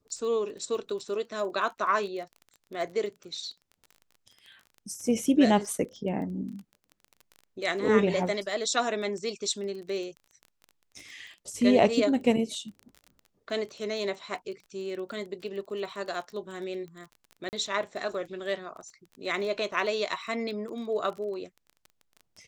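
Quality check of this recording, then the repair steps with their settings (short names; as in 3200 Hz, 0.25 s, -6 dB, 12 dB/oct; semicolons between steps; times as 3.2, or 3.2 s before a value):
crackle 22/s -38 dBFS
17.49–17.53 gap 39 ms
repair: de-click; interpolate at 17.49, 39 ms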